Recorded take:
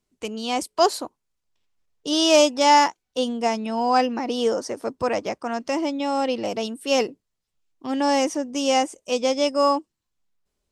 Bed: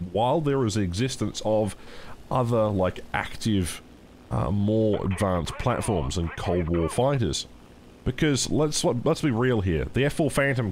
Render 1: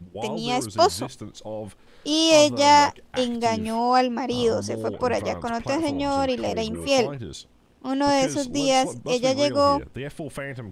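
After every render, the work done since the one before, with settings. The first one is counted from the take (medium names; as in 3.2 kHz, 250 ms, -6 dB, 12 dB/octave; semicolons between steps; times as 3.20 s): add bed -10 dB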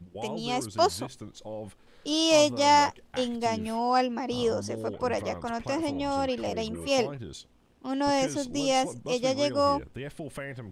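trim -5 dB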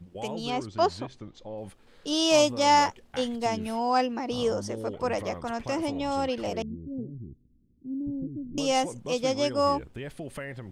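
0.50–1.58 s: distance through air 130 m; 6.62–8.58 s: inverse Chebyshev low-pass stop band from 1 kHz, stop band 60 dB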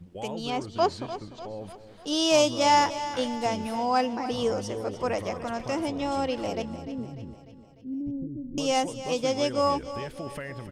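feedback delay 298 ms, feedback 53%, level -13 dB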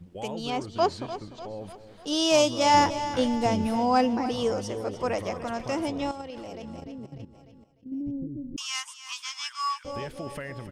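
2.74–4.29 s: bass shelf 320 Hz +9.5 dB; 6.11–7.92 s: level held to a coarse grid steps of 13 dB; 8.56–9.85 s: steep high-pass 1 kHz 72 dB/octave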